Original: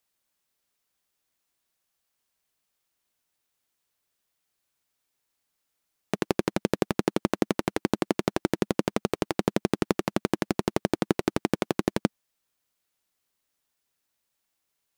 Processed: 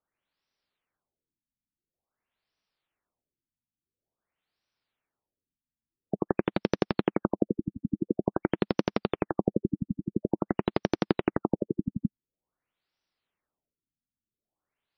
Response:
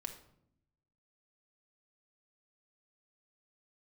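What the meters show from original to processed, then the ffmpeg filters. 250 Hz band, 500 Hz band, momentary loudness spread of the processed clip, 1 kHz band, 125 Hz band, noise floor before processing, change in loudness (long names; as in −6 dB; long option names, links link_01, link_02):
−1.5 dB, −2.0 dB, 5 LU, −3.5 dB, −1.0 dB, −80 dBFS, −2.0 dB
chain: -af "afftfilt=real='re*lt(b*sr/1024,280*pow(6100/280,0.5+0.5*sin(2*PI*0.48*pts/sr)))':imag='im*lt(b*sr/1024,280*pow(6100/280,0.5+0.5*sin(2*PI*0.48*pts/sr)))':win_size=1024:overlap=0.75,volume=-1dB"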